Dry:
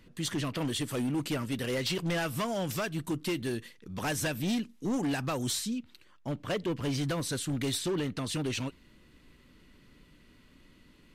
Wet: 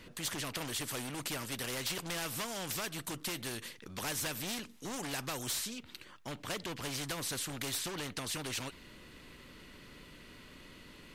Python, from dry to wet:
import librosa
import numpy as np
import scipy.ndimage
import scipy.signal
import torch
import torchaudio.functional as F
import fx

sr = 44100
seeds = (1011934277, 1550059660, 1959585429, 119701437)

y = fx.spectral_comp(x, sr, ratio=2.0)
y = y * librosa.db_to_amplitude(2.5)